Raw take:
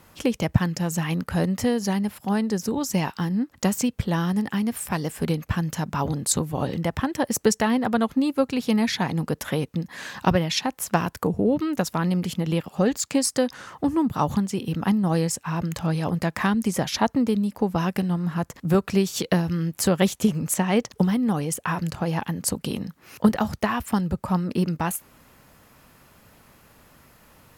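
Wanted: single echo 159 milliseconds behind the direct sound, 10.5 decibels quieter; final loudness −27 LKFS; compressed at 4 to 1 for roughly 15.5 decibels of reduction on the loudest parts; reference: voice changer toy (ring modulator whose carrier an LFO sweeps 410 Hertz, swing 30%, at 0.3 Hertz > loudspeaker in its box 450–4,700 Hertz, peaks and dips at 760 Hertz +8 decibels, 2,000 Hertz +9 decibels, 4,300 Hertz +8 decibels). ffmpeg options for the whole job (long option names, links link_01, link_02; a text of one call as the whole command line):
ffmpeg -i in.wav -af "acompressor=threshold=-31dB:ratio=4,aecho=1:1:159:0.299,aeval=exprs='val(0)*sin(2*PI*410*n/s+410*0.3/0.3*sin(2*PI*0.3*n/s))':channel_layout=same,highpass=450,equalizer=frequency=760:width_type=q:width=4:gain=8,equalizer=frequency=2000:width_type=q:width=4:gain=9,equalizer=frequency=4300:width_type=q:width=4:gain=8,lowpass=frequency=4700:width=0.5412,lowpass=frequency=4700:width=1.3066,volume=9dB" out.wav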